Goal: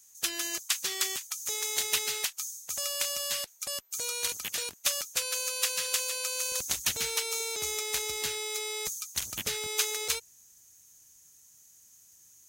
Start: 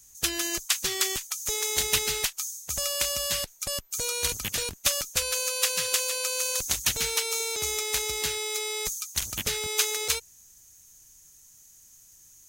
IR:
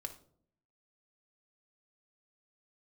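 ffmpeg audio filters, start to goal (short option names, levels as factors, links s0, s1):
-af "asetnsamples=n=441:p=0,asendcmd='6.52 highpass f 130',highpass=f=530:p=1,volume=0.668"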